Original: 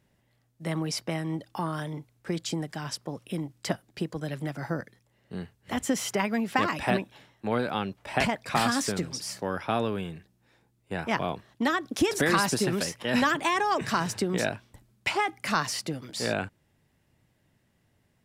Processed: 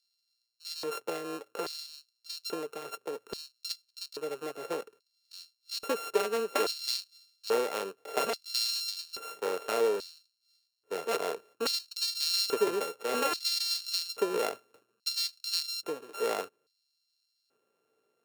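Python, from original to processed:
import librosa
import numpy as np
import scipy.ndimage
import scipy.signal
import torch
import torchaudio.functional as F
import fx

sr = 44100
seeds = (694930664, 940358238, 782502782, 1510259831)

y = np.r_[np.sort(x[:len(x) // 32 * 32].reshape(-1, 32), axis=1).ravel(), x[len(x) // 32 * 32:]]
y = fx.filter_lfo_highpass(y, sr, shape='square', hz=0.6, low_hz=440.0, high_hz=4500.0, q=7.3)
y = y * librosa.db_to_amplitude(-7.0)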